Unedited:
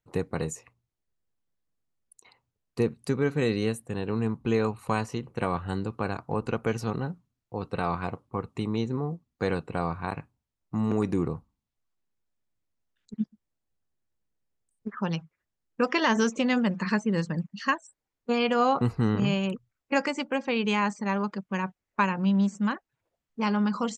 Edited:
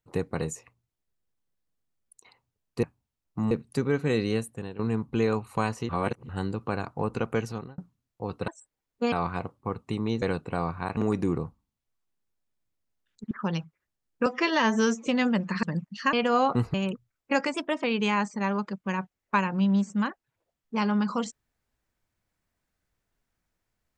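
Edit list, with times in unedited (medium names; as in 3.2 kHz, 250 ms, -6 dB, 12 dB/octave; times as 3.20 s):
3.80–4.11 s: fade out, to -13.5 dB
5.21–5.61 s: reverse
6.70–7.10 s: fade out
8.90–9.44 s: delete
10.19–10.87 s: move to 2.83 s
13.21–14.89 s: delete
15.84–16.38 s: stretch 1.5×
16.94–17.25 s: delete
17.75–18.39 s: move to 7.80 s
19.00–19.35 s: delete
20.15–20.49 s: speed 114%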